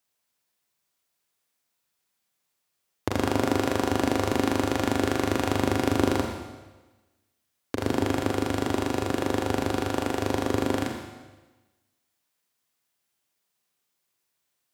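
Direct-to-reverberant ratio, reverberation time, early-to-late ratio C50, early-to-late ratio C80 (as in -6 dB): 2.0 dB, 1.2 s, 4.0 dB, 5.5 dB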